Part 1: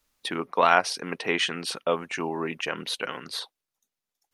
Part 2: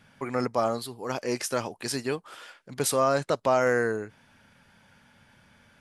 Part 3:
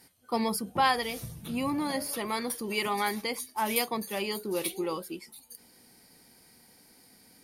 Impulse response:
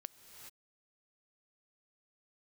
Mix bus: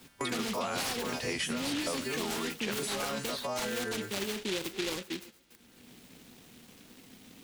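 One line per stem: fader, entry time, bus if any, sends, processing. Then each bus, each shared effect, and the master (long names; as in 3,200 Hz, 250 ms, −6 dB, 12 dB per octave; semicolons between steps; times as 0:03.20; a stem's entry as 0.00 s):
−8.5 dB, 0.00 s, no bus, no send, brickwall limiter −14 dBFS, peak gain reduction 10.5 dB
−1.5 dB, 0.00 s, bus A, no send, every partial snapped to a pitch grid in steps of 2 semitones; noise gate −42 dBFS, range −18 dB; downward compressor, threshold −29 dBFS, peak gain reduction 14.5 dB
−3.0 dB, 0.00 s, bus A, send −11 dB, high-shelf EQ 2,600 Hz −11 dB; short delay modulated by noise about 2,800 Hz, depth 0.28 ms
bus A: 0.0 dB, parametric band 250 Hz +3.5 dB 0.2 octaves; brickwall limiter −27 dBFS, peak gain reduction 10.5 dB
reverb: on, pre-delay 3 ms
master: noise gate −52 dBFS, range −11 dB; multiband upward and downward compressor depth 70%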